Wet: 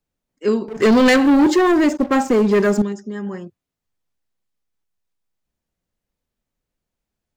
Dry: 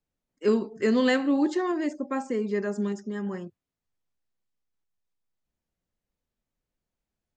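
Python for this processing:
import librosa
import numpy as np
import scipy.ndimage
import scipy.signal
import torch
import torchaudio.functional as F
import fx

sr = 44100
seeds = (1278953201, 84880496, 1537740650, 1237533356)

y = fx.leveller(x, sr, passes=3, at=(0.68, 2.82))
y = y * librosa.db_to_amplitude(4.5)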